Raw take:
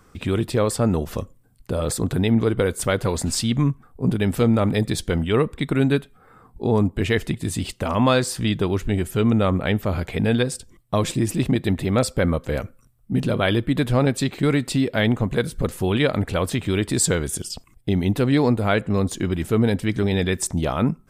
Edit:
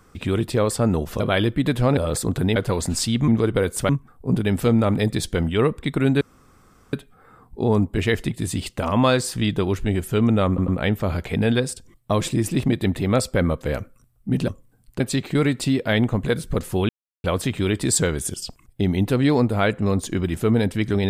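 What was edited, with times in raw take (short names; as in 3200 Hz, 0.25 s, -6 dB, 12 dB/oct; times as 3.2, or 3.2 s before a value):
1.2–1.72 swap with 13.31–14.08
2.31–2.92 move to 3.64
5.96 insert room tone 0.72 s
9.51 stutter 0.10 s, 3 plays
15.97–16.32 mute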